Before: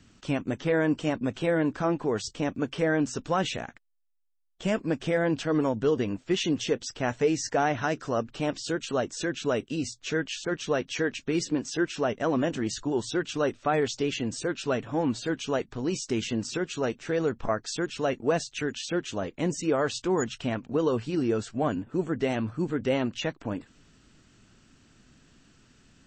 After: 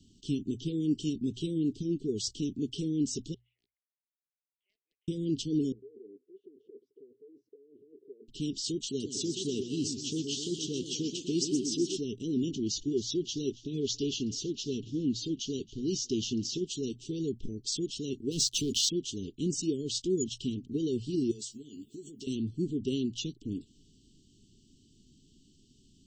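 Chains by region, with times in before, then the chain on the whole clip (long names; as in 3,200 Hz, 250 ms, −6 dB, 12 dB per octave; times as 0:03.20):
0:03.34–0:05.08: Chebyshev band-pass filter 730–2,100 Hz, order 5 + downward compressor 3 to 1, threshold −35 dBFS
0:05.72–0:08.28: compressor whose output falls as the input rises −34 dBFS + flat-topped band-pass 470 Hz, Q 2.9
0:08.87–0:11.97: high-pass filter 82 Hz + feedback echo with a swinging delay time 124 ms, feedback 61%, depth 202 cents, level −8 dB
0:12.49–0:16.64: Butterworth low-pass 7,000 Hz 72 dB per octave + feedback echo with a high-pass in the loop 278 ms, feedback 54%, high-pass 1,000 Hz, level −16 dB
0:18.31–0:18.89: leveller curve on the samples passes 3 + downward compressor, threshold −24 dBFS
0:21.31–0:22.27: RIAA equalisation recording + downward compressor 12 to 1, threshold −37 dBFS + double-tracking delay 14 ms −7 dB
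whole clip: Chebyshev band-stop filter 410–3,000 Hz, order 5; mains-hum notches 60/120 Hz; dynamic equaliser 5,500 Hz, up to +5 dB, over −49 dBFS, Q 0.8; level −2 dB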